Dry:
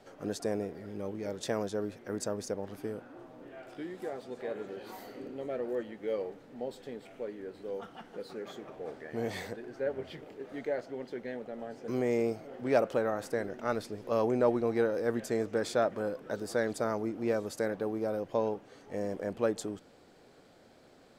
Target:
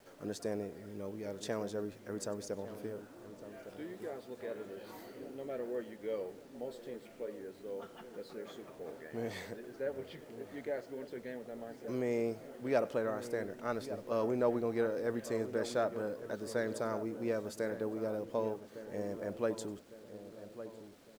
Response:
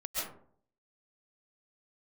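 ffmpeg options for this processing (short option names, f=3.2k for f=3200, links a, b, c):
-filter_complex "[0:a]bandreject=f=770:w=14,acrusher=bits=9:mix=0:aa=0.000001,asplit=2[a][b];[b]adelay=1157,lowpass=f=1.2k:p=1,volume=-11.5dB,asplit=2[c][d];[d]adelay=1157,lowpass=f=1.2k:p=1,volume=0.52,asplit=2[e][f];[f]adelay=1157,lowpass=f=1.2k:p=1,volume=0.52,asplit=2[g][h];[h]adelay=1157,lowpass=f=1.2k:p=1,volume=0.52,asplit=2[i][j];[j]adelay=1157,lowpass=f=1.2k:p=1,volume=0.52,asplit=2[k][l];[l]adelay=1157,lowpass=f=1.2k:p=1,volume=0.52[m];[a][c][e][g][i][k][m]amix=inputs=7:normalize=0[n];[1:a]atrim=start_sample=2205,atrim=end_sample=4410[o];[n][o]afir=irnorm=-1:irlink=0"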